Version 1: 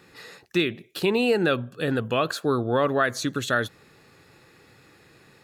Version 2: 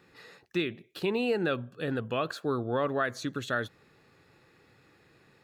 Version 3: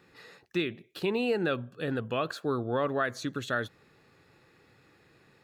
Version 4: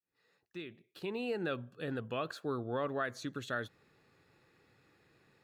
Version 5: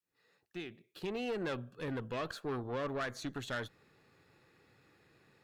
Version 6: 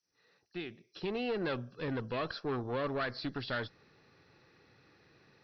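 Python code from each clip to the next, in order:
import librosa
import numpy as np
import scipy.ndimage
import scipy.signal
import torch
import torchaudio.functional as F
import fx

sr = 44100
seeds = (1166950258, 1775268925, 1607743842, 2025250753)

y1 = fx.peak_eq(x, sr, hz=11000.0, db=-7.0, octaves=1.8)
y1 = y1 * librosa.db_to_amplitude(-6.5)
y2 = y1
y3 = fx.fade_in_head(y2, sr, length_s=1.58)
y3 = y3 * librosa.db_to_amplitude(-6.5)
y4 = fx.tube_stage(y3, sr, drive_db=35.0, bias=0.5)
y4 = y4 * librosa.db_to_amplitude(3.5)
y5 = fx.freq_compress(y4, sr, knee_hz=4000.0, ratio=4.0)
y5 = y5 * librosa.db_to_amplitude(2.5)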